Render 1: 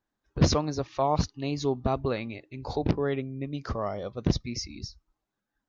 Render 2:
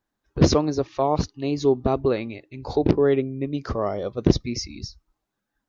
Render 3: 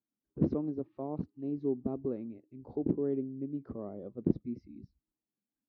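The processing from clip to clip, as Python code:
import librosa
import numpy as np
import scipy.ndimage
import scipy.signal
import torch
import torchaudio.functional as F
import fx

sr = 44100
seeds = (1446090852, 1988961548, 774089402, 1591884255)

y1 = fx.dynamic_eq(x, sr, hz=370.0, q=1.3, threshold_db=-41.0, ratio=4.0, max_db=8)
y1 = fx.rider(y1, sr, range_db=4, speed_s=2.0)
y1 = F.gain(torch.from_numpy(y1), 1.5).numpy()
y2 = fx.bandpass_q(y1, sr, hz=240.0, q=1.6)
y2 = fx.air_absorb(y2, sr, metres=180.0)
y2 = F.gain(torch.from_numpy(y2), -7.5).numpy()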